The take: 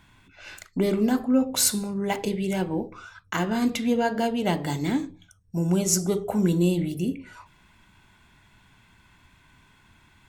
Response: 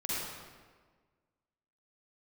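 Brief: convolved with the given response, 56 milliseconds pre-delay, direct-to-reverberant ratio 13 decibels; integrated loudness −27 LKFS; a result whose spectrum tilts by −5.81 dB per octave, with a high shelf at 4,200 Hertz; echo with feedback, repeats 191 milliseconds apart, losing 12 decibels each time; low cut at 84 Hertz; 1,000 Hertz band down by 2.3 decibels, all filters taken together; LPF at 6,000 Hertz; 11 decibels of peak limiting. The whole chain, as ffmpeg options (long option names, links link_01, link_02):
-filter_complex "[0:a]highpass=84,lowpass=6000,equalizer=frequency=1000:width_type=o:gain=-3,highshelf=frequency=4200:gain=-5,alimiter=limit=-22dB:level=0:latency=1,aecho=1:1:191|382|573:0.251|0.0628|0.0157,asplit=2[link_01][link_02];[1:a]atrim=start_sample=2205,adelay=56[link_03];[link_02][link_03]afir=irnorm=-1:irlink=0,volume=-18.5dB[link_04];[link_01][link_04]amix=inputs=2:normalize=0,volume=3.5dB"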